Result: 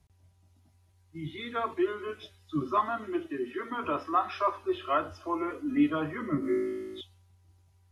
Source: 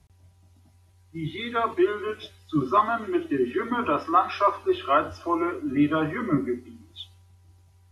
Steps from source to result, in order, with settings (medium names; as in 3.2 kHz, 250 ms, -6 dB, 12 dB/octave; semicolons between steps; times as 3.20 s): 3.27–3.84 s: bass shelf 210 Hz -11 dB; 5.50–5.90 s: comb 4.1 ms, depth 85%; 6.40–7.01 s: flutter echo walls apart 3.2 m, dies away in 1.5 s; trim -6.5 dB